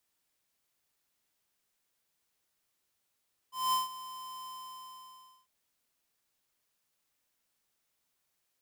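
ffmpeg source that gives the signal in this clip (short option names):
-f lavfi -i "aevalsrc='0.0422*(2*lt(mod(1030*t,1),0.5)-1)':d=1.95:s=44100,afade=t=in:d=0.208,afade=t=out:st=0.208:d=0.151:silence=0.15,afade=t=out:st=0.94:d=1.01"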